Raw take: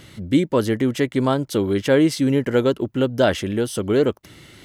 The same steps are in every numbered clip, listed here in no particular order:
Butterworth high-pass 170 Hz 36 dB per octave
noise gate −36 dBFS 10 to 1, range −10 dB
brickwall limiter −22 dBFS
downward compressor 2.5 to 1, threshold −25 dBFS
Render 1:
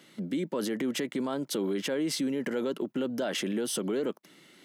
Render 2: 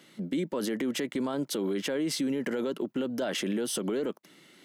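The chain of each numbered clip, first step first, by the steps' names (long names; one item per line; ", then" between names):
brickwall limiter, then downward compressor, then noise gate, then Butterworth high-pass
Butterworth high-pass, then brickwall limiter, then noise gate, then downward compressor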